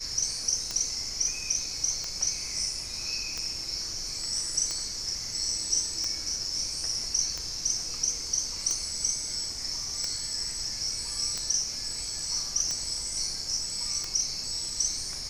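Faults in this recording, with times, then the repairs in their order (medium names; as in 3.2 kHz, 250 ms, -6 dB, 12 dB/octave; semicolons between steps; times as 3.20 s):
tick 45 rpm -18 dBFS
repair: de-click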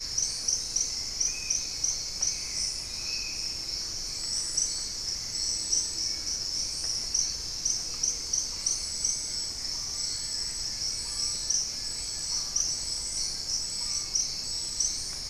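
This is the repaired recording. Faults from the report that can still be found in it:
nothing left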